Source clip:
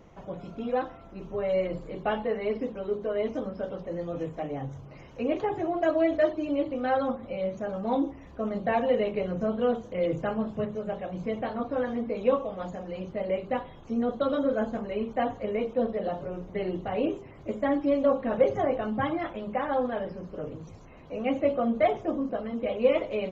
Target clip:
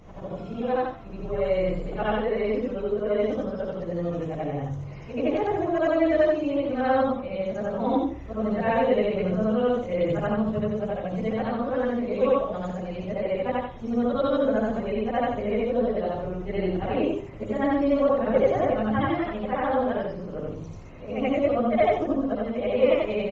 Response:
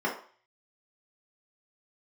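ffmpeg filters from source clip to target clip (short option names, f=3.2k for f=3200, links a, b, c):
-filter_complex "[0:a]afftfilt=real='re':imag='-im':win_size=8192:overlap=0.75,acrossover=split=120|1700[a][b][c];[a]acontrast=55[d];[d][b][c]amix=inputs=3:normalize=0,aresample=32000,aresample=44100,volume=8dB"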